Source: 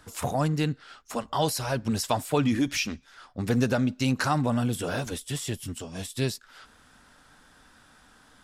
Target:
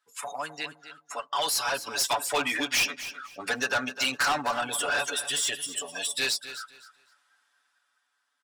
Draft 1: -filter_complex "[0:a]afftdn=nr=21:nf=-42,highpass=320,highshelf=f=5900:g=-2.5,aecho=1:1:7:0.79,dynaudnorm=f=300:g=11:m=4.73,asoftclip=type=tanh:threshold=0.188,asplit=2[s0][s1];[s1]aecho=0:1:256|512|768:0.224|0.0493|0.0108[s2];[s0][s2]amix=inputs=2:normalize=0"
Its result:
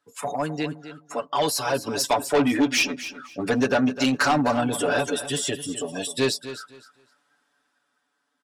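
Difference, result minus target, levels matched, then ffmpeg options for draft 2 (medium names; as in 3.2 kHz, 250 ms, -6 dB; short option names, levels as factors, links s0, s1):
250 Hz band +12.5 dB; saturation: distortion -4 dB
-filter_complex "[0:a]afftdn=nr=21:nf=-42,highpass=1100,highshelf=f=5900:g=-2.5,aecho=1:1:7:0.79,dynaudnorm=f=300:g=11:m=4.73,asoftclip=type=tanh:threshold=0.0891,asplit=2[s0][s1];[s1]aecho=0:1:256|512|768:0.224|0.0493|0.0108[s2];[s0][s2]amix=inputs=2:normalize=0"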